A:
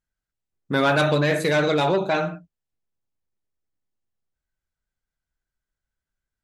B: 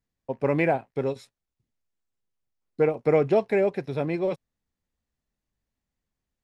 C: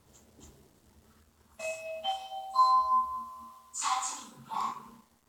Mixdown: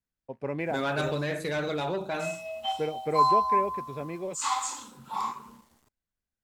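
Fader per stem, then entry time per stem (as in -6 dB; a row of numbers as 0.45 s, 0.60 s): -10.0 dB, -9.0 dB, +2.0 dB; 0.00 s, 0.00 s, 0.60 s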